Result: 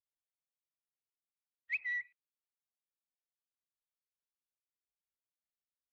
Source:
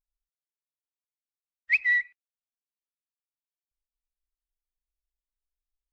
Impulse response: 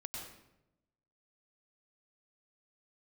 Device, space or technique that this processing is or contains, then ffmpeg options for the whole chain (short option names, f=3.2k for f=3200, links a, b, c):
guitar amplifier with harmonic tremolo: -filter_complex "[0:a]acrossover=split=2200[a][b];[a]aeval=exprs='val(0)*(1-0.7/2+0.7/2*cos(2*PI*5.5*n/s))':c=same[c];[b]aeval=exprs='val(0)*(1-0.7/2-0.7/2*cos(2*PI*5.5*n/s))':c=same[d];[c][d]amix=inputs=2:normalize=0,asoftclip=type=tanh:threshold=-21dB,highpass=100,equalizer=f=120:t=q:w=4:g=8,equalizer=f=310:t=q:w=4:g=-7,equalizer=f=1.7k:t=q:w=4:g=-4,lowpass=f=3.9k:w=0.5412,lowpass=f=3.9k:w=1.3066,volume=-6.5dB"